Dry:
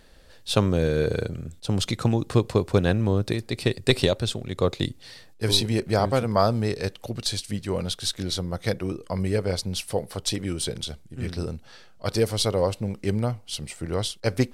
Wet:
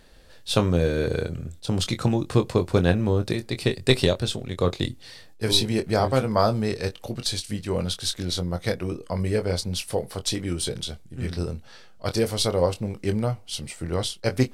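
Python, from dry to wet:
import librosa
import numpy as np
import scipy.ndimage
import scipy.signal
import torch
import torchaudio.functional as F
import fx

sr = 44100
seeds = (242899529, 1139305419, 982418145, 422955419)

y = fx.doubler(x, sr, ms=23.0, db=-8.5)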